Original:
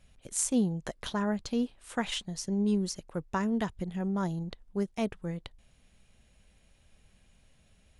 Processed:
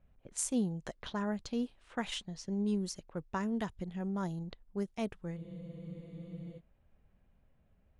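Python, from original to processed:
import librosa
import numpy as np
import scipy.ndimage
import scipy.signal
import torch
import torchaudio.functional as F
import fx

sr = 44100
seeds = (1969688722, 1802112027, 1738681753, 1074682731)

y = fx.env_lowpass(x, sr, base_hz=1200.0, full_db=-28.5)
y = fx.spec_freeze(y, sr, seeds[0], at_s=5.38, hold_s=1.2)
y = y * librosa.db_to_amplitude(-5.0)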